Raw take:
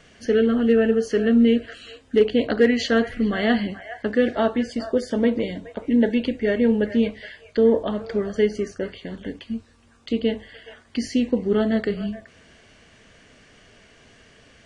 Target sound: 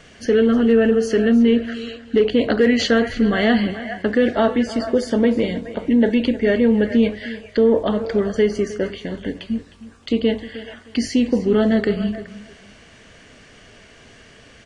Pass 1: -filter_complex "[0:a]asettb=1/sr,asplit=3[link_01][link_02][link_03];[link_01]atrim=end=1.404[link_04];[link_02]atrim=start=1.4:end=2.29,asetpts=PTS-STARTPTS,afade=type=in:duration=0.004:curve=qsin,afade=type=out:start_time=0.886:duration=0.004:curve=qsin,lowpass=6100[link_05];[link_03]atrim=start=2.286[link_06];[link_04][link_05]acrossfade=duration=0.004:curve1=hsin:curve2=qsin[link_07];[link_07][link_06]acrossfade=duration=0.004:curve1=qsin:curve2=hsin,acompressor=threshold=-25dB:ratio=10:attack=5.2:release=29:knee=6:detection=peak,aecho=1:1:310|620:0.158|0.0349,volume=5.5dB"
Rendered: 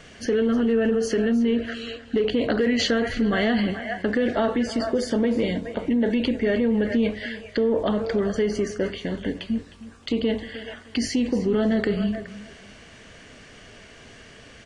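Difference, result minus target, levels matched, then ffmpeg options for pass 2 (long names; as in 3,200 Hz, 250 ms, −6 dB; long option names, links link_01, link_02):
downward compressor: peak gain reduction +7.5 dB
-filter_complex "[0:a]asettb=1/sr,asplit=3[link_01][link_02][link_03];[link_01]atrim=end=1.404[link_04];[link_02]atrim=start=1.4:end=2.29,asetpts=PTS-STARTPTS,afade=type=in:duration=0.004:curve=qsin,afade=type=out:start_time=0.886:duration=0.004:curve=qsin,lowpass=6100[link_05];[link_03]atrim=start=2.286[link_06];[link_04][link_05]acrossfade=duration=0.004:curve1=hsin:curve2=qsin[link_07];[link_07][link_06]acrossfade=duration=0.004:curve1=qsin:curve2=hsin,acompressor=threshold=-16.5dB:ratio=10:attack=5.2:release=29:knee=6:detection=peak,aecho=1:1:310|620:0.158|0.0349,volume=5.5dB"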